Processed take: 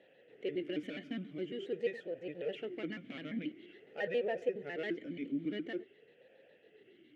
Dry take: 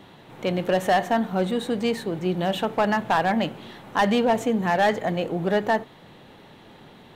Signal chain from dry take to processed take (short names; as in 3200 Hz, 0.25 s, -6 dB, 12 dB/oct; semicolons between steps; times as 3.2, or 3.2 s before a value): trilling pitch shifter -3.5 st, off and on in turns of 69 ms; vowel sweep e-i 0.47 Hz; gain -2.5 dB